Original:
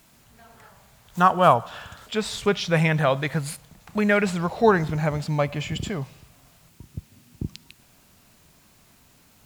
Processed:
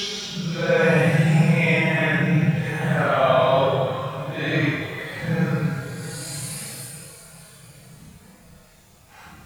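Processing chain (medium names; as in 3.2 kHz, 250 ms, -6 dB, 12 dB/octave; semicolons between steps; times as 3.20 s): two-slope reverb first 0.58 s, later 2.3 s, from -25 dB, DRR 5 dB; Paulstretch 7.4×, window 0.05 s, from 2.63 s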